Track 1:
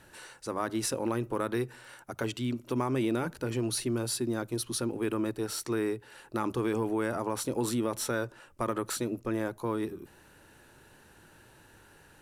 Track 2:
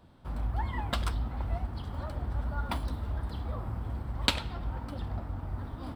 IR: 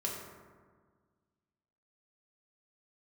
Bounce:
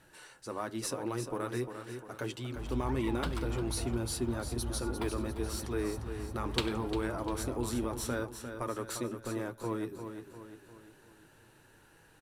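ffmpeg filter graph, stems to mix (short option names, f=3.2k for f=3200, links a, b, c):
-filter_complex "[0:a]flanger=delay=6.1:depth=2.1:regen=-48:speed=0.83:shape=sinusoidal,volume=-1dB,asplit=2[a][b];[b]volume=-8.5dB[c];[1:a]adelay=2300,volume=-6.5dB,asplit=2[d][e];[e]volume=-13.5dB[f];[c][f]amix=inputs=2:normalize=0,aecho=0:1:350|700|1050|1400|1750|2100|2450:1|0.47|0.221|0.104|0.0488|0.0229|0.0108[g];[a][d][g]amix=inputs=3:normalize=0"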